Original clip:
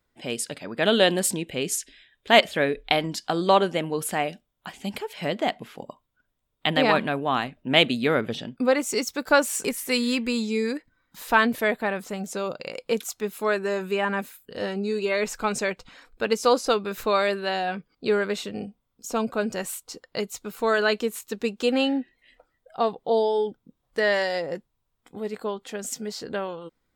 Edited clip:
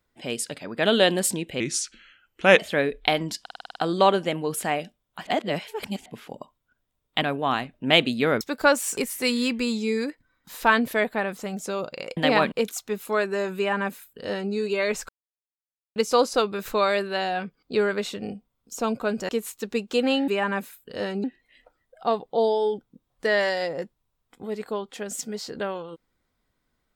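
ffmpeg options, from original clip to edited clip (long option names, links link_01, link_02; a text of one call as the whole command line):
ffmpeg -i in.wav -filter_complex "[0:a]asplit=21[link_01][link_02][link_03][link_04][link_05][link_06][link_07][link_08][link_09][link_10][link_11][link_12][link_13][link_14][link_15][link_16][link_17][link_18][link_19][link_20][link_21];[link_01]atrim=end=1.604[link_22];[link_02]atrim=start=1.6:end=2.42,asetpts=PTS-STARTPTS,asetrate=36603,aresample=44100[link_23];[link_03]atrim=start=2.416:end=3.292[link_24];[link_04]atrim=start=3.238:end=3.292[link_25];[link_05]atrim=start=3.238:end=3.292[link_26];[link_06]atrim=start=3.238:end=3.292[link_27];[link_07]atrim=start=3.238:end=3.292[link_28];[link_08]atrim=start=3.238:end=3.292[link_29];[link_09]atrim=start=3.238:end=3.292[link_30];[link_10]atrim=start=3.238:end=4.752[link_31];[link_11]atrim=start=4.748:end=5.542,asetpts=PTS-STARTPTS,areverse[link_32];[link_12]atrim=start=5.538:end=6.702[link_33];[link_13]atrim=start=7.048:end=8.242[link_34];[link_14]atrim=start=9.078:end=12.842[link_35];[link_15]atrim=start=6.698:end=7.052[link_36];[link_16]atrim=start=12.838:end=15.41,asetpts=PTS-STARTPTS,afade=type=out:start_time=2.568:duration=0.004:curve=hsin[link_37];[link_17]atrim=start=15.41:end=16.28,asetpts=PTS-STARTPTS,volume=0[link_38];[link_18]atrim=start=16.28:end=19.612,asetpts=PTS-STARTPTS,afade=type=in:duration=0.004:curve=hsin[link_39];[link_19]atrim=start=20.978:end=21.972[link_40];[link_20]atrim=start=13.888:end=14.852[link_41];[link_21]atrim=start=21.968[link_42];[link_22][link_23]acrossfade=duration=0.004:curve1=hsin:curve2=hsin[link_43];[link_43][link_24]acrossfade=duration=0.004:curve1=hsin:curve2=hsin[link_44];[link_44][link_25]acrossfade=duration=0.004:curve1=hsin:curve2=hsin[link_45];[link_45][link_26]acrossfade=duration=0.004:curve1=hsin:curve2=hsin[link_46];[link_46][link_27]acrossfade=duration=0.004:curve1=hsin:curve2=hsin[link_47];[link_47][link_28]acrossfade=duration=0.004:curve1=hsin:curve2=hsin[link_48];[link_48][link_29]acrossfade=duration=0.004:curve1=hsin:curve2=hsin[link_49];[link_49][link_30]acrossfade=duration=0.004:curve1=hsin:curve2=hsin[link_50];[link_50][link_31]acrossfade=duration=0.004:curve1=hsin:curve2=hsin[link_51];[link_51][link_32]acrossfade=duration=0.004:curve1=hsin:curve2=hsin[link_52];[link_52][link_33]acrossfade=duration=0.004:curve1=hsin:curve2=hsin[link_53];[link_53][link_34]acrossfade=duration=0.004:curve1=hsin:curve2=hsin[link_54];[link_54][link_35]acrossfade=duration=0.004:curve1=hsin:curve2=hsin[link_55];[link_55][link_36]acrossfade=duration=0.004:curve1=hsin:curve2=hsin[link_56];[link_37][link_38][link_39]concat=n=3:v=0:a=1[link_57];[link_56][link_57]acrossfade=duration=0.004:curve1=hsin:curve2=hsin[link_58];[link_58][link_40]acrossfade=duration=0.004:curve1=hsin:curve2=hsin[link_59];[link_59][link_41]acrossfade=duration=0.004:curve1=hsin:curve2=hsin[link_60];[link_60][link_42]acrossfade=duration=0.004:curve1=hsin:curve2=hsin" out.wav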